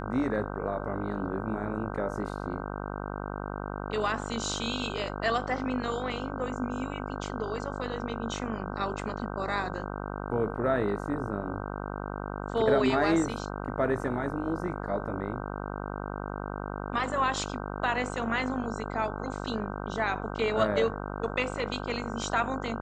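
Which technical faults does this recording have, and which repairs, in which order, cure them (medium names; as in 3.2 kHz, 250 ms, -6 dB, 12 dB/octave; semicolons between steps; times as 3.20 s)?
buzz 50 Hz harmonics 31 -36 dBFS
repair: de-hum 50 Hz, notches 31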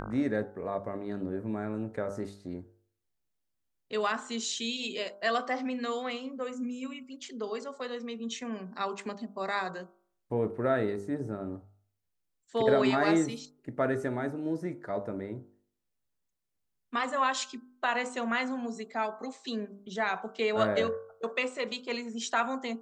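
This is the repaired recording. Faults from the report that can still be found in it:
nothing left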